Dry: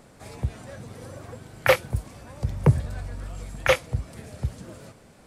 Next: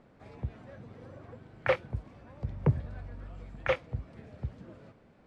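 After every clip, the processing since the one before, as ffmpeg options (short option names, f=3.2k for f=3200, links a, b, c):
-af "lowpass=2.8k,equalizer=f=270:t=o:w=1.6:g=3,volume=-9dB"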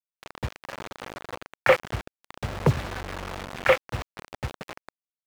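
-filter_complex "[0:a]acrusher=bits=6:mix=0:aa=0.000001,asplit=2[a][b];[b]highpass=f=720:p=1,volume=11dB,asoftclip=type=tanh:threshold=-13dB[c];[a][c]amix=inputs=2:normalize=0,lowpass=f=2.7k:p=1,volume=-6dB,volume=7.5dB"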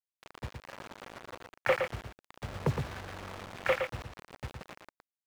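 -af "aecho=1:1:115:0.501,volume=-9dB"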